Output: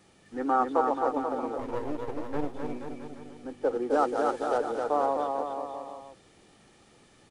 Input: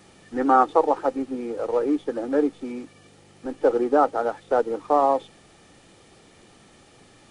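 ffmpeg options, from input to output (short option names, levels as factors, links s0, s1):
-filter_complex "[0:a]asettb=1/sr,asplit=3[s0][s1][s2];[s0]atrim=end=1.584[s3];[s1]atrim=start=1.58:end=2.54,asetpts=PTS-STARTPTS,afade=t=in:d=0.004:c=qsin,afade=t=out:st=0.956:d=0.004:c=qsin,aeval=exprs='max(val(0),0)':c=same[s4];[s2]atrim=start=2.536[s5];[s3][s4]acrossfade=d=0.004:c1=hsin:c2=qsin[s6];[s6][s5]acrossfade=d=0.004:c1=qsin:c2=hsin,asettb=1/sr,asplit=3[s7][s8][s9];[s7]atrim=end=3.904[s10];[s8]atrim=start=3.9:end=4.58,asetpts=PTS-STARTPTS,afade=t=in:d=0.004:c=qsin,afade=t=out:st=0.676:d=0.004:c=qsin,highshelf=f=2300:g=11.5[s11];[s9]atrim=start=4.576[s12];[s10][s11]acrossfade=d=0.004:c1=hsin:c2=qsin[s13];[s13][s12]acrossfade=d=0.004:c1=qsin:c2=hsin,aecho=1:1:260|481|668.8|828.5|964.2:0.631|0.398|0.251|0.158|0.1,volume=0.398"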